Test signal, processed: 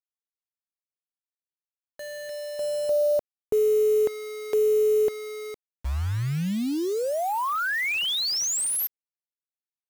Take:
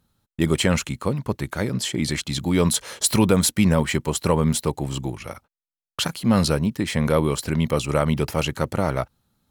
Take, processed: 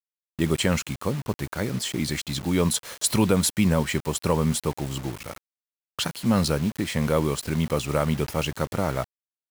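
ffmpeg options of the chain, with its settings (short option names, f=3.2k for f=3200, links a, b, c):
-af "acrusher=bits=5:mix=0:aa=0.000001,volume=-3dB"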